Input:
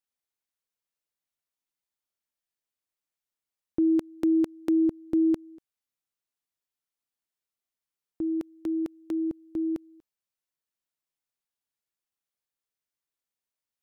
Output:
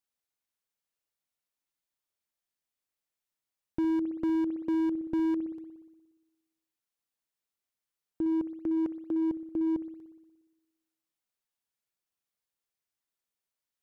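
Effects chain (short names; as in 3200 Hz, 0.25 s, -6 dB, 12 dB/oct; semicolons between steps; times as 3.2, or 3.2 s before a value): spring tank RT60 1.2 s, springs 59 ms, chirp 45 ms, DRR 13.5 dB; slew limiter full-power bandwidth 17 Hz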